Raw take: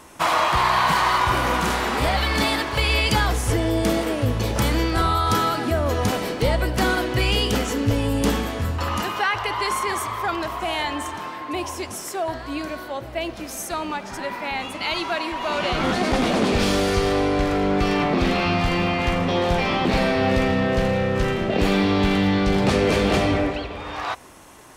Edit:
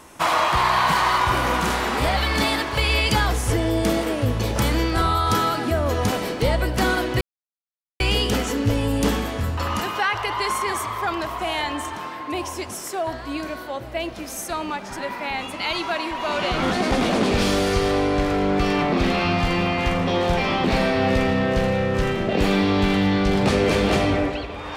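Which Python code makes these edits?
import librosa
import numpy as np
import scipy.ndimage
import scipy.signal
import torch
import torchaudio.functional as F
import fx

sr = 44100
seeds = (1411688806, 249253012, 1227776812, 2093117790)

y = fx.edit(x, sr, fx.insert_silence(at_s=7.21, length_s=0.79), tone=tone)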